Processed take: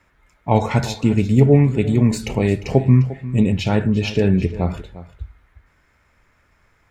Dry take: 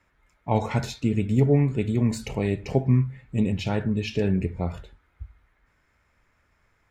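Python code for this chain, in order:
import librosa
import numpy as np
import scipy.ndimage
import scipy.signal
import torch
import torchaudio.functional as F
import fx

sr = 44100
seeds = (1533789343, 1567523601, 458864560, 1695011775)

y = x + 10.0 ** (-16.0 / 20.0) * np.pad(x, (int(351 * sr / 1000.0), 0))[:len(x)]
y = y * 10.0 ** (7.0 / 20.0)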